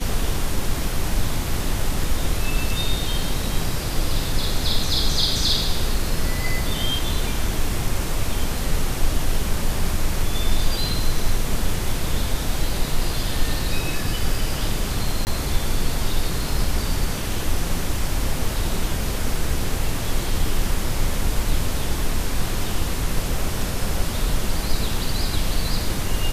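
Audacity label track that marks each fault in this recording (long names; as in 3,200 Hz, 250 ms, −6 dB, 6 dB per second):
15.250000	15.270000	drop-out 19 ms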